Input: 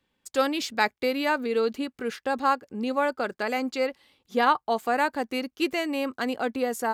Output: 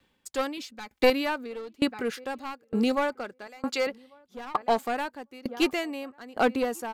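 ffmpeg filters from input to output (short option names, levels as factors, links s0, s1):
-filter_complex "[0:a]asettb=1/sr,asplit=3[s0][s1][s2];[s0]atrim=end=0.574[s3];[s1]atrim=start=0.57:end=1.1,asetpts=PTS-STARTPTS,afade=t=in:d=0.004:c=qsin,afade=t=out:st=0.526:d=0.004:c=qsin,aecho=1:1:3.9:0.75,atrim=end_sample=23373[s4];[s2]atrim=start=1.096[s5];[s3][s4]acrossfade=d=0.004:c1=hsin:c2=qsin[s6];[s6][s5]acrossfade=d=0.004:c1=qsin:c2=hsin,asettb=1/sr,asplit=3[s7][s8][s9];[s7]atrim=end=2.134[s10];[s8]atrim=start=2.13:end=2.95,asetpts=PTS-STARTPTS,afade=t=in:d=0.004:c=qsin,afade=t=out:st=0.816:d=0.004:c=qsin,highshelf=f=5000:g=6.5[s11];[s9]atrim=start=2.946[s12];[s10][s11]acrossfade=d=0.004:c1=hsin:c2=qsin[s13];[s13][s12]acrossfade=d=0.004:c1=qsin:c2=hsin,asettb=1/sr,asplit=3[s14][s15][s16];[s14]atrim=end=3.474[s17];[s15]atrim=start=3.47:end=3.87,asetpts=PTS-STARTPTS,afade=t=in:d=0.004:c=qsin,afade=t=out:st=0.396:d=0.004:c=qsin,highpass=f=650:p=1[s18];[s16]atrim=start=3.866[s19];[s17][s18]acrossfade=d=0.004:c1=hsin:c2=qsin[s20];[s20][s19]acrossfade=d=0.004:c1=qsin:c2=hsin,asplit=2[s21][s22];[s22]adelay=1143,lowpass=f=1200:p=1,volume=0.0841,asplit=2[s23][s24];[s24]adelay=1143,lowpass=f=1200:p=1,volume=0.2[s25];[s21][s23][s25]amix=inputs=3:normalize=0,aeval=exprs='clip(val(0),-1,0.0708)':c=same,aeval=exprs='val(0)*pow(10,-28*if(lt(mod(1.1*n/s,1),2*abs(1.1)/1000),1-mod(1.1*n/s,1)/(2*abs(1.1)/1000),(mod(1.1*n/s,1)-2*abs(1.1)/1000)/(1-2*abs(1.1)/1000))/20)':c=same,volume=2.66"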